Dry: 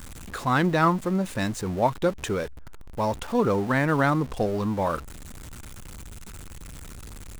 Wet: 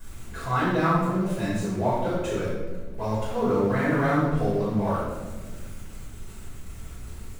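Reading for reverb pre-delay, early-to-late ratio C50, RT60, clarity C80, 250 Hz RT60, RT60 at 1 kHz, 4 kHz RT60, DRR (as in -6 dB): 5 ms, -1.0 dB, 1.4 s, 2.0 dB, 2.1 s, 1.1 s, 0.80 s, -13.0 dB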